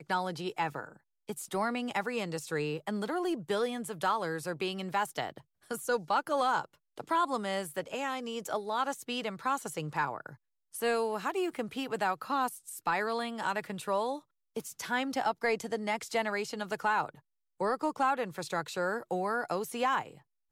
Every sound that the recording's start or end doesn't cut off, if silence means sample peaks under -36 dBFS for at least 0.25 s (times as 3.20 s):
1.29–5.38 s
5.71–6.65 s
7.00–10.29 s
10.75–14.17 s
14.56–17.09 s
17.61–20.02 s